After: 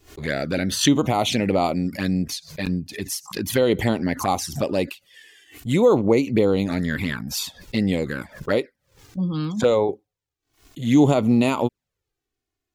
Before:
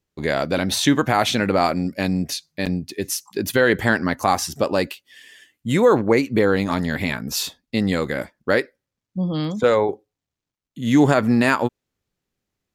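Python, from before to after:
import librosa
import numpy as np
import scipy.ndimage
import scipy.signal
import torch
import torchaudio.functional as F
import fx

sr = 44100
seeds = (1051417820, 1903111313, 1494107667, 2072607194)

y = fx.env_flanger(x, sr, rest_ms=2.8, full_db=-15.0)
y = fx.pre_swell(y, sr, db_per_s=140.0)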